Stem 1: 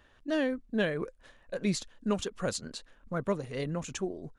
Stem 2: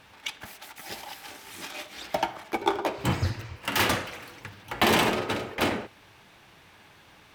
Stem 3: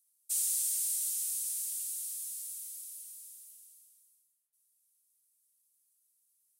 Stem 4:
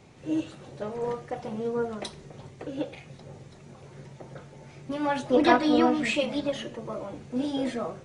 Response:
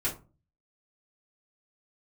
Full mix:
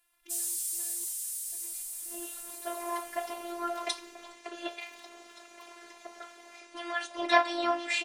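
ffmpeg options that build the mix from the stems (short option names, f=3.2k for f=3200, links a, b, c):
-filter_complex "[0:a]agate=range=-33dB:threshold=-55dB:ratio=3:detection=peak,asoftclip=type=tanh:threshold=-31dB,volume=-16.5dB[a];[1:a]highpass=f=1.1k:p=1,acompressor=threshold=-32dB:ratio=6,volume=-18.5dB[b];[2:a]volume=1.5dB[c];[3:a]highpass=750,dynaudnorm=f=120:g=11:m=13.5dB,adelay=1850,volume=-4.5dB[d];[a][b][c][d]amix=inputs=4:normalize=0,afftfilt=real='hypot(re,im)*cos(PI*b)':imag='0':win_size=512:overlap=0.75"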